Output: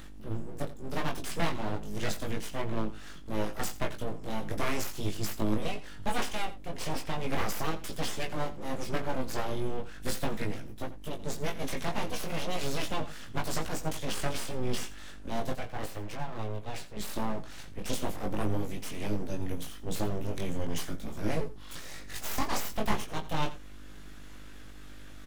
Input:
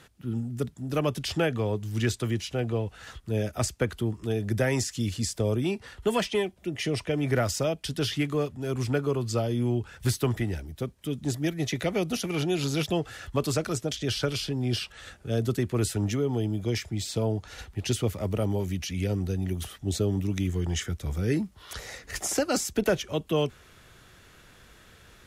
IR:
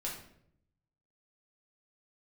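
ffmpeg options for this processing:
-filter_complex "[0:a]flanger=delay=18:depth=5.7:speed=0.37,acompressor=mode=upward:threshold=-48dB:ratio=2.5,aeval=exprs='val(0)+0.00562*(sin(2*PI*50*n/s)+sin(2*PI*2*50*n/s)/2+sin(2*PI*3*50*n/s)/3+sin(2*PI*4*50*n/s)/4+sin(2*PI*5*50*n/s)/5)':c=same,asettb=1/sr,asplit=3[a][b][c];[a]atrim=end=15.534[d];[b]atrim=start=15.53:end=16.97,asetpts=PTS-STARTPTS,afade=t=in:d=0.004:c=qsin,afade=t=out:st=1.436:d=0.004:c=qsin,bass=f=250:g=-12,treble=f=4k:g=-10[e];[c]atrim=start=16.966[f];[d][e]acrossfade=d=0.004:c1=hsin:c2=qsin[g];[g][f]acrossfade=d=0.004:c1=qsin:c2=hsin,aeval=exprs='abs(val(0))':c=same,asplit=2[h][i];[i]adelay=19,volume=-8dB[j];[h][j]amix=inputs=2:normalize=0,aecho=1:1:86:0.168"

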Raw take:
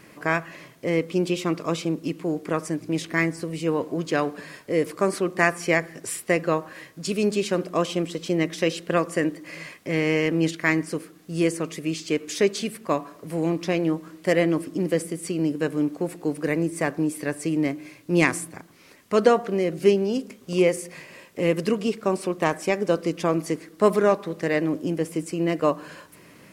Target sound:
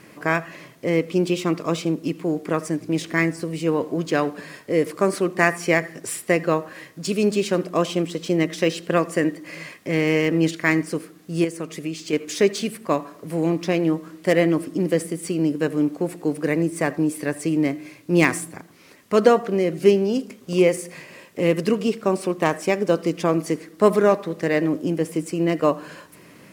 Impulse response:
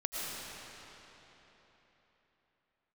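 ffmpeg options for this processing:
-filter_complex "[0:a]lowshelf=f=350:g=3.5[a];[1:a]atrim=start_sample=2205,afade=t=out:st=0.13:d=0.01,atrim=end_sample=6174[b];[a][b]afir=irnorm=-1:irlink=0,asettb=1/sr,asplit=3[c][d][e];[c]atrim=end=11.444[f];[d]atrim=start=11.44:end=12.13,asetpts=PTS-STARTPTS,afade=t=in:d=0.004:c=qsin,afade=t=out:st=0.686:d=0.004:c=qsin,acompressor=threshold=-29dB:ratio=2.5[g];[e]atrim=start=12.126[h];[f][g]acrossfade=d=0.004:c1=hsin:c2=qsin[i];[i][h]acrossfade=d=0.004:c1=qsin:c2=hsin,lowshelf=f=69:g=-10.5,volume=3dB" -ar 44100 -c:a adpcm_ima_wav

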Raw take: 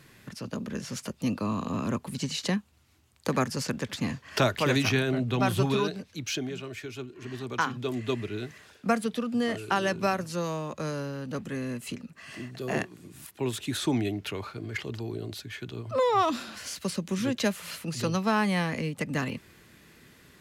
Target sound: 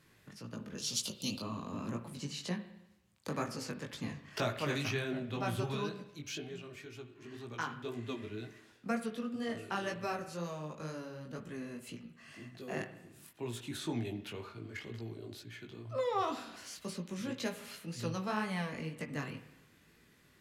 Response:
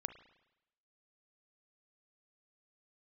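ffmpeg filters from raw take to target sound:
-filter_complex "[0:a]flanger=delay=17:depth=3.9:speed=2,asettb=1/sr,asplit=3[a][b][c];[a]atrim=end=0.784[d];[b]atrim=start=0.78:end=1.42,asetpts=PTS-STARTPTS,afade=t=in:d=0.004:c=qsin,afade=t=out:st=0.636:d=0.004:c=qsin,highshelf=f=2.5k:t=q:w=3:g=12.5[e];[c]atrim=start=1.416[f];[d][e]acrossfade=d=0.004:c1=hsin:c2=qsin[g];[g][f]acrossfade=d=0.004:c1=qsin:c2=hsin[h];[1:a]atrim=start_sample=2205[i];[h][i]afir=irnorm=-1:irlink=0,volume=-4.5dB"

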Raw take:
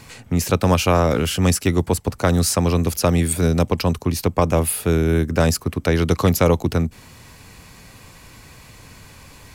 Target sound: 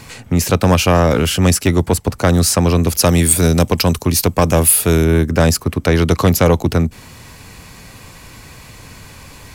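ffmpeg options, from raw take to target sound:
-filter_complex "[0:a]asettb=1/sr,asplit=3[a][b][c];[a]atrim=end=2.994[d];[b]atrim=start=2.99:end=5.05,asetpts=PTS-STARTPTS,afade=t=in:d=0.004:c=qsin,afade=t=out:st=2.056:d=0.004:c=qsin,highshelf=f=4k:g=9[e];[c]atrim=start=5.046[f];[d][e]acrossfade=d=0.004:c1=hsin:c2=qsin[g];[g][f]acrossfade=d=0.004:c1=qsin:c2=hsin,acontrast=75,volume=-1dB"

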